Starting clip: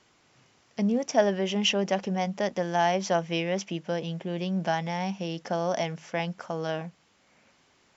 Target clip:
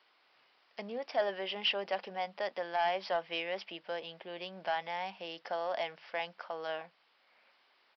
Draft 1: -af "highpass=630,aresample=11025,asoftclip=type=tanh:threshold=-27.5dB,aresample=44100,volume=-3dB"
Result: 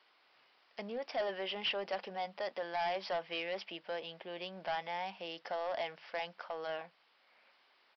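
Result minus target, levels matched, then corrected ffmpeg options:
soft clipping: distortion +8 dB
-af "highpass=630,aresample=11025,asoftclip=type=tanh:threshold=-19.5dB,aresample=44100,volume=-3dB"

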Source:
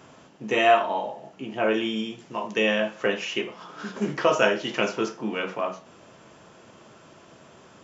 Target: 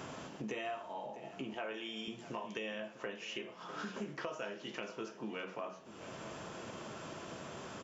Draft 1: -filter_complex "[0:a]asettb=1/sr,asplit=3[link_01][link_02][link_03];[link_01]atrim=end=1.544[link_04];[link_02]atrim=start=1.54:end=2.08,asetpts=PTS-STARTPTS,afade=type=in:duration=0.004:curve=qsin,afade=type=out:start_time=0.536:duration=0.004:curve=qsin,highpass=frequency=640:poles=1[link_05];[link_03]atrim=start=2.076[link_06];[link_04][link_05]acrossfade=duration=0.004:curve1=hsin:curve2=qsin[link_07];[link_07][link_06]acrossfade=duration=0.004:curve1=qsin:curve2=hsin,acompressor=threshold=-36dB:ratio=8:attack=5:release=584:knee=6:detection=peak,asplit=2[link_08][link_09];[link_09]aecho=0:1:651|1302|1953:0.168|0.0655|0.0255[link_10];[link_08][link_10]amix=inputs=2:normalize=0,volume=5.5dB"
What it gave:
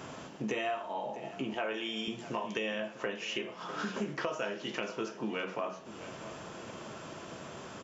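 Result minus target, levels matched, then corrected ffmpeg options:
downward compressor: peak gain reduction −6.5 dB
-filter_complex "[0:a]asettb=1/sr,asplit=3[link_01][link_02][link_03];[link_01]atrim=end=1.544[link_04];[link_02]atrim=start=1.54:end=2.08,asetpts=PTS-STARTPTS,afade=type=in:duration=0.004:curve=qsin,afade=type=out:start_time=0.536:duration=0.004:curve=qsin,highpass=frequency=640:poles=1[link_05];[link_03]atrim=start=2.076[link_06];[link_04][link_05]acrossfade=duration=0.004:curve1=hsin:curve2=qsin[link_07];[link_07][link_06]acrossfade=duration=0.004:curve1=qsin:curve2=hsin,acompressor=threshold=-43.5dB:ratio=8:attack=5:release=584:knee=6:detection=peak,asplit=2[link_08][link_09];[link_09]aecho=0:1:651|1302|1953:0.168|0.0655|0.0255[link_10];[link_08][link_10]amix=inputs=2:normalize=0,volume=5.5dB"

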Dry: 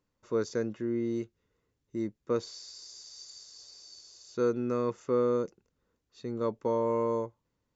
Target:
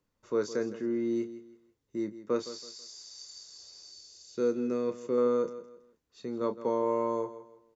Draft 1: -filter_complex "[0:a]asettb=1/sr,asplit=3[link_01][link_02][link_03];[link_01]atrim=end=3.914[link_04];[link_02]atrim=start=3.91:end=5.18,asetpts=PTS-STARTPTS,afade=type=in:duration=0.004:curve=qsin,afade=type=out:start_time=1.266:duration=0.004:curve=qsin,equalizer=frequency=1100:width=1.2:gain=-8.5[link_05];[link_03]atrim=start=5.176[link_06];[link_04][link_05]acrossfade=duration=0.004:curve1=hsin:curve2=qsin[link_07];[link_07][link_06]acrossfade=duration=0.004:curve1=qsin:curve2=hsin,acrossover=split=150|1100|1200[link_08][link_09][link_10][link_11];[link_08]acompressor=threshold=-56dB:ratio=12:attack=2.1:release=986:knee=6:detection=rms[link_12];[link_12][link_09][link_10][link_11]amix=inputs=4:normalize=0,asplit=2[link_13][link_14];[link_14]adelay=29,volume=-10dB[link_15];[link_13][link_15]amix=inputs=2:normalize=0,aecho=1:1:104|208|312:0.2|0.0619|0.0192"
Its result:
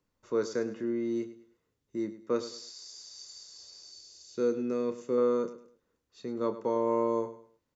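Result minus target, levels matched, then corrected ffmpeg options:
echo 59 ms early
-filter_complex "[0:a]asettb=1/sr,asplit=3[link_01][link_02][link_03];[link_01]atrim=end=3.914[link_04];[link_02]atrim=start=3.91:end=5.18,asetpts=PTS-STARTPTS,afade=type=in:duration=0.004:curve=qsin,afade=type=out:start_time=1.266:duration=0.004:curve=qsin,equalizer=frequency=1100:width=1.2:gain=-8.5[link_05];[link_03]atrim=start=5.176[link_06];[link_04][link_05]acrossfade=duration=0.004:curve1=hsin:curve2=qsin[link_07];[link_07][link_06]acrossfade=duration=0.004:curve1=qsin:curve2=hsin,acrossover=split=150|1100|1200[link_08][link_09][link_10][link_11];[link_08]acompressor=threshold=-56dB:ratio=12:attack=2.1:release=986:knee=6:detection=rms[link_12];[link_12][link_09][link_10][link_11]amix=inputs=4:normalize=0,asplit=2[link_13][link_14];[link_14]adelay=29,volume=-10dB[link_15];[link_13][link_15]amix=inputs=2:normalize=0,aecho=1:1:163|326|489:0.2|0.0619|0.0192"

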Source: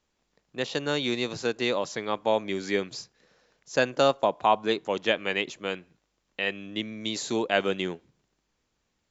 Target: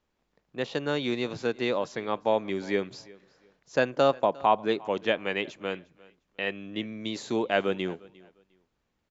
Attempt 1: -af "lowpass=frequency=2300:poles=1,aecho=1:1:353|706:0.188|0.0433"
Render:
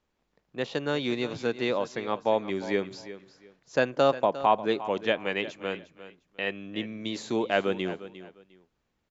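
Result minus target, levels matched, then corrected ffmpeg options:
echo-to-direct +8.5 dB
-af "lowpass=frequency=2300:poles=1,aecho=1:1:353|706:0.0708|0.0163"

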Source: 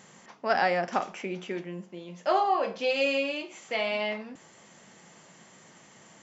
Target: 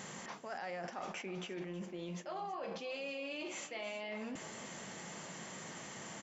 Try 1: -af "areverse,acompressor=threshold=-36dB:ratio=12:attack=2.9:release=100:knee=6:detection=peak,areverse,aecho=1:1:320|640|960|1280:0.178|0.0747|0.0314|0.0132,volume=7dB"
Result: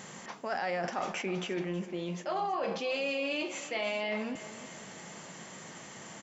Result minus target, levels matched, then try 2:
downward compressor: peak gain reduction −9.5 dB
-af "areverse,acompressor=threshold=-46.5dB:ratio=12:attack=2.9:release=100:knee=6:detection=peak,areverse,aecho=1:1:320|640|960|1280:0.178|0.0747|0.0314|0.0132,volume=7dB"

